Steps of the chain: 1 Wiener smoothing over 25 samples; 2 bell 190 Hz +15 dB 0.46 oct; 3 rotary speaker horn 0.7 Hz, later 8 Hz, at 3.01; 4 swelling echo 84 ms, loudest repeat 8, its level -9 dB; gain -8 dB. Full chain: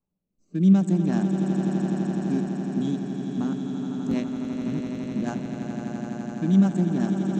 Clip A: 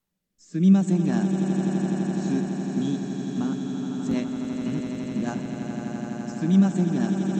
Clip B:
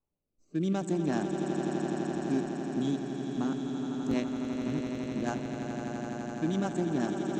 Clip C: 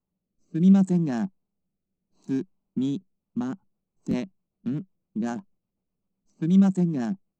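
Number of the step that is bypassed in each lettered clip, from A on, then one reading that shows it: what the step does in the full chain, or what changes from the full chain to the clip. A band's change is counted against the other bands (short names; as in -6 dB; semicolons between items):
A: 1, 4 kHz band +2.5 dB; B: 2, 125 Hz band -10.5 dB; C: 4, echo-to-direct 2.5 dB to none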